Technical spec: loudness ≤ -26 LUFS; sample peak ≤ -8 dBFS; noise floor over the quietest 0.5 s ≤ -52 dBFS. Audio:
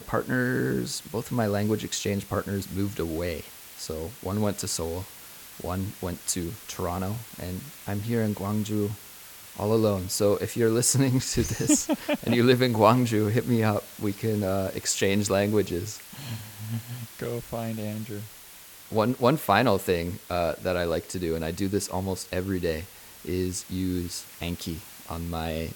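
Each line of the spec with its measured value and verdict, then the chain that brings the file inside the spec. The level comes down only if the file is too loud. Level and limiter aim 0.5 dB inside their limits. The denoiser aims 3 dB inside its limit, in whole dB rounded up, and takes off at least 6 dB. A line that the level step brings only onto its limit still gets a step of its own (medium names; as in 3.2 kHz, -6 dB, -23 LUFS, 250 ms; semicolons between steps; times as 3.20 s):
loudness -27.0 LUFS: pass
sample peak -5.0 dBFS: fail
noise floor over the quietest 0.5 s -47 dBFS: fail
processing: noise reduction 8 dB, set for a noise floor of -47 dBFS; peak limiter -8.5 dBFS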